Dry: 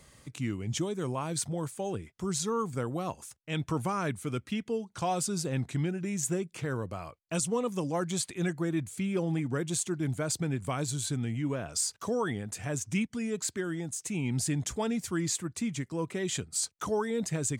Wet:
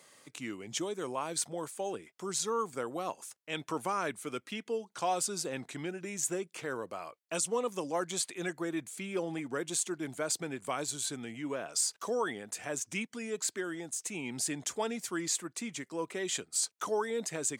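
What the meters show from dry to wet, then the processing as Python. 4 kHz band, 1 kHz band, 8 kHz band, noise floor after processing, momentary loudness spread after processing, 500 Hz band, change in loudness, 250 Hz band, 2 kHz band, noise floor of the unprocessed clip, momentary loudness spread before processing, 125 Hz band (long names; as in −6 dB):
0.0 dB, 0.0 dB, 0.0 dB, −72 dBFS, 8 LU, −1.5 dB, −2.5 dB, −7.0 dB, 0.0 dB, −67 dBFS, 5 LU, −15.0 dB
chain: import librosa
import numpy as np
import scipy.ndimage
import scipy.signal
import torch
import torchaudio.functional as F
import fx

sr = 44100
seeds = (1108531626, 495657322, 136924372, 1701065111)

y = scipy.signal.sosfilt(scipy.signal.butter(2, 360.0, 'highpass', fs=sr, output='sos'), x)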